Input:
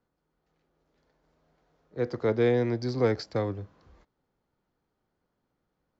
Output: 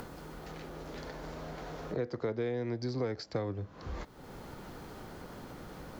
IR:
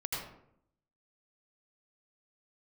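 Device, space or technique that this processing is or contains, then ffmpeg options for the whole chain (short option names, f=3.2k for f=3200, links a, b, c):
upward and downward compression: -af "acompressor=mode=upward:threshold=-36dB:ratio=2.5,acompressor=threshold=-42dB:ratio=6,volume=9.5dB"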